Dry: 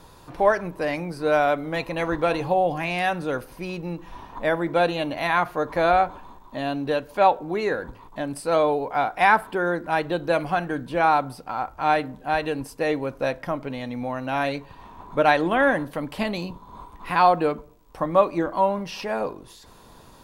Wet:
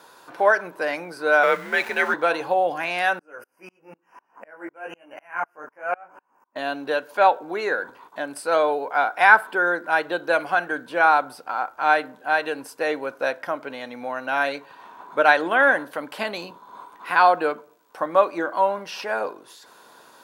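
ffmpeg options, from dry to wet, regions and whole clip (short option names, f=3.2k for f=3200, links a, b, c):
-filter_complex "[0:a]asettb=1/sr,asplit=3[a][b][c];[a]atrim=end=1.434[d];[b]atrim=start=1.43:end=2.14,asetpts=PTS-STARTPTS,afade=t=in:d=0.004:c=qsin,afade=t=out:st=0.706:d=0.004:c=qsin,aeval=exprs='val(0)+0.5*0.0141*sgn(val(0))':c=same,afreqshift=-110,equalizer=f=2k:t=o:w=0.84:g=7.5[e];[c]atrim=start=2.136[f];[d][e]acrossfade=d=0.004:c1=hsin:c2=qsin[g];[g][f]acrossfade=d=0.004:c1=qsin:c2=hsin,asettb=1/sr,asplit=3[h][i][j];[h]atrim=end=3.194[k];[i]atrim=start=3.19:end=6.56,asetpts=PTS-STARTPTS,afade=t=in:d=0.004:c=qsin,afade=t=out:st=3.366:d=0.004:c=qsin,asuperstop=centerf=3800:order=12:qfactor=2.2,flanger=delay=16:depth=4.9:speed=1,aeval=exprs='val(0)*pow(10,-35*if(lt(mod(-4*n/s,1),2*abs(-4)/1000),1-mod(-4*n/s,1)/(2*abs(-4)/1000),(mod(-4*n/s,1)-2*abs(-4)/1000)/(1-2*abs(-4)/1000))/20)':c=same[l];[j]atrim=start=6.556[m];[k][l]acrossfade=d=0.004:c1=hsin:c2=qsin[n];[n][m]acrossfade=d=0.004:c1=qsin:c2=hsin,highpass=400,equalizer=f=1.5k:w=6.5:g=10,volume=1dB"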